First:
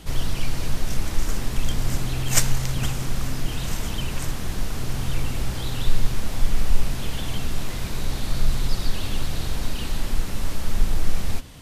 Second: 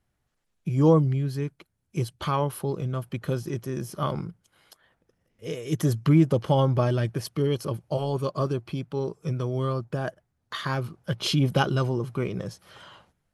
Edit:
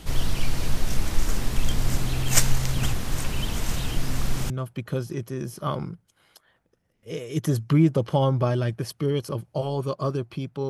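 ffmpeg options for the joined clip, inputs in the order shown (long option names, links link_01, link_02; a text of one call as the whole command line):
ffmpeg -i cue0.wav -i cue1.wav -filter_complex "[0:a]apad=whole_dur=10.69,atrim=end=10.69,asplit=2[link_01][link_02];[link_01]atrim=end=2.932[link_03];[link_02]atrim=start=2.928:end=4.502,asetpts=PTS-STARTPTS,areverse[link_04];[1:a]atrim=start=2.858:end=9.05[link_05];[link_03][link_04]acrossfade=duration=0.004:curve1=hsin:curve2=hsin[link_06];[link_06][link_05]acrossfade=duration=0.004:curve1=hsin:curve2=hsin" out.wav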